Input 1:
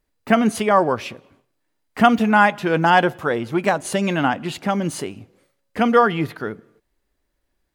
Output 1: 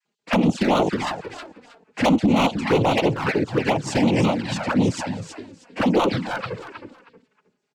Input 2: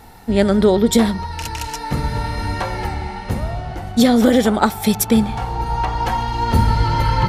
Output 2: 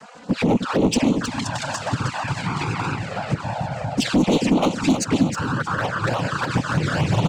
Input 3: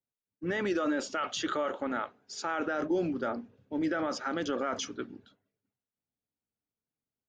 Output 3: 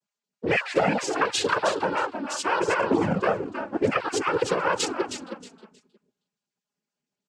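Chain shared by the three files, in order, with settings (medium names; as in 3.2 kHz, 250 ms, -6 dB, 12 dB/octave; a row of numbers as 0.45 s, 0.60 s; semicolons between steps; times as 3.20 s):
random holes in the spectrogram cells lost 33%; in parallel at -0.5 dB: compression 6:1, threshold -24 dBFS; on the sum: noise-vocoded speech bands 8; hard clipper -12.5 dBFS; on a send: feedback delay 315 ms, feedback 24%, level -8 dB; on the sum: touch-sensitive flanger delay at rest 4.9 ms, full sweep at -14 dBFS; peak normalisation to -9 dBFS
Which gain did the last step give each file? +0.5 dB, 0.0 dB, +7.0 dB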